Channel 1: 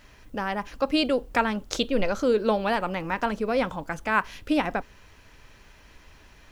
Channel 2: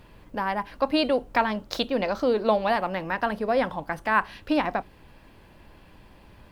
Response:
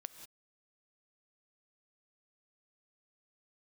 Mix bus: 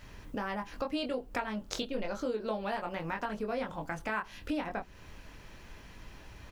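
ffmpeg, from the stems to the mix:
-filter_complex "[0:a]volume=0.891[s0];[1:a]lowshelf=f=150:g=7,volume=-1,adelay=22,volume=0.531[s1];[s0][s1]amix=inputs=2:normalize=0,acompressor=threshold=0.0178:ratio=3"

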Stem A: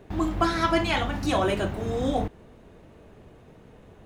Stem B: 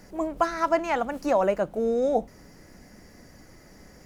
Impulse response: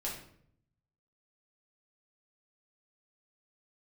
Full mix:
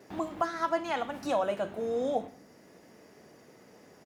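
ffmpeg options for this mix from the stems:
-filter_complex "[0:a]alimiter=limit=0.2:level=0:latency=1:release=435,volume=0.531,asplit=2[s0][s1];[s1]volume=0.2[s2];[1:a]adelay=3.6,volume=0.422,asplit=2[s3][s4];[s4]apad=whole_len=178678[s5];[s0][s5]sidechaincompress=threshold=0.0158:ratio=8:attack=12:release=602[s6];[2:a]atrim=start_sample=2205[s7];[s2][s7]afir=irnorm=-1:irlink=0[s8];[s6][s3][s8]amix=inputs=3:normalize=0,highpass=210"

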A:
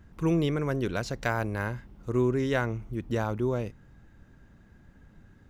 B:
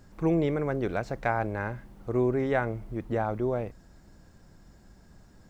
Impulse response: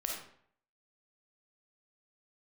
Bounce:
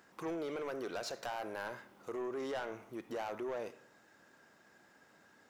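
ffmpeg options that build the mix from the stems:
-filter_complex "[0:a]alimiter=limit=0.0944:level=0:latency=1,volume=1.06,asplit=2[s0][s1];[s1]volume=0.141[s2];[1:a]volume=0.447,asplit=2[s3][s4];[s4]apad=whole_len=242463[s5];[s0][s5]sidechaincompress=threshold=0.0126:ratio=8:attack=11:release=219[s6];[2:a]atrim=start_sample=2205[s7];[s2][s7]afir=irnorm=-1:irlink=0[s8];[s6][s3][s8]amix=inputs=3:normalize=0,highpass=510,asoftclip=type=tanh:threshold=0.02"

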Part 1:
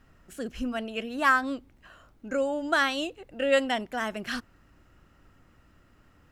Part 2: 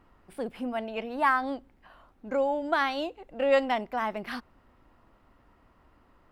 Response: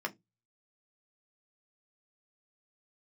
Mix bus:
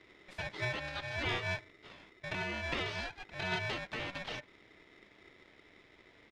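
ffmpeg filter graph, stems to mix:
-filter_complex "[0:a]aeval=exprs='clip(val(0),-1,0.0224)':c=same,aeval=exprs='val(0)*sgn(sin(2*PI*830*n/s))':c=same,volume=1,asplit=2[s0][s1];[s1]volume=0.15[s2];[1:a]highpass=1400,acompressor=threshold=0.0112:ratio=4,adelay=2.4,volume=1.33,asplit=2[s3][s4];[s4]apad=whole_len=278298[s5];[s0][s5]sidechaincompress=threshold=0.00316:ratio=8:attack=46:release=123[s6];[2:a]atrim=start_sample=2205[s7];[s2][s7]afir=irnorm=-1:irlink=0[s8];[s6][s3][s8]amix=inputs=3:normalize=0,lowpass=3600,aeval=exprs='val(0)*sin(2*PI*1200*n/s)':c=same"

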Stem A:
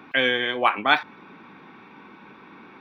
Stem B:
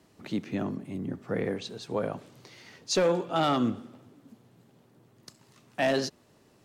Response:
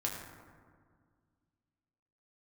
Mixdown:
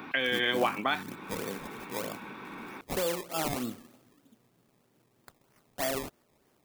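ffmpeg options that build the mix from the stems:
-filter_complex "[0:a]acompressor=threshold=0.0562:ratio=6,alimiter=limit=0.126:level=0:latency=1:release=412,volume=1.41[s0];[1:a]lowshelf=f=170:g=-8.5,acrusher=samples=21:mix=1:aa=0.000001:lfo=1:lforange=21:lforate=3.2,volume=0.501[s1];[s0][s1]amix=inputs=2:normalize=0,highshelf=f=7800:g=10"

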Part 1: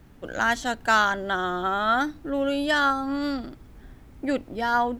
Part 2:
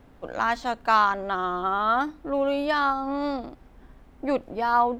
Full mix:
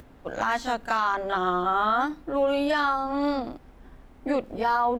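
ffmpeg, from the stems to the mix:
-filter_complex "[0:a]acompressor=mode=upward:threshold=0.0316:ratio=2.5,volume=0.398[s0];[1:a]bandreject=f=50:t=h:w=6,bandreject=f=100:t=h:w=6,bandreject=f=150:t=h:w=6,bandreject=f=200:t=h:w=6,adelay=28,volume=1.19,asplit=2[s1][s2];[s2]apad=whole_len=220163[s3];[s0][s3]sidechaingate=range=0.0224:threshold=0.0126:ratio=16:detection=peak[s4];[s4][s1]amix=inputs=2:normalize=0,alimiter=limit=0.178:level=0:latency=1:release=72"

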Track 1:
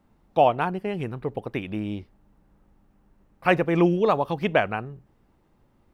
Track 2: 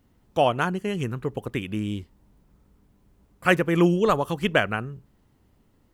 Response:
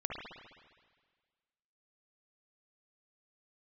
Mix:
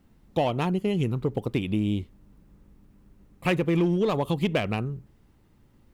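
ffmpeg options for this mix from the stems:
-filter_complex "[0:a]equalizer=f=790:w=0.72:g=-9.5,acontrast=82,volume=0.708[s0];[1:a]volume=9.44,asoftclip=hard,volume=0.106,volume=0.596[s1];[s0][s1]amix=inputs=2:normalize=0,acompressor=threshold=0.1:ratio=6"

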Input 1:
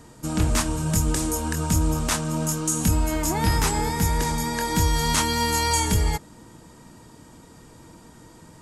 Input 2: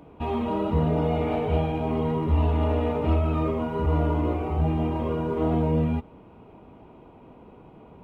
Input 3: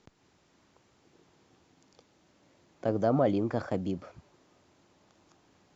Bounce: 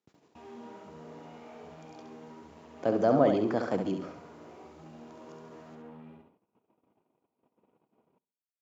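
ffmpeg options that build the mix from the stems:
-filter_complex "[1:a]asoftclip=type=tanh:threshold=0.0531,adelay=150,volume=0.316,asplit=2[s0][s1];[s1]volume=0.299[s2];[2:a]volume=1.26,asplit=2[s3][s4];[s4]volume=0.473[s5];[s0]acompressor=threshold=0.00398:ratio=6,volume=1[s6];[s2][s5]amix=inputs=2:normalize=0,aecho=0:1:68|136|204|272|340:1|0.39|0.152|0.0593|0.0231[s7];[s3][s6][s7]amix=inputs=3:normalize=0,agate=range=0.0631:threshold=0.00178:ratio=16:detection=peak,highpass=180"

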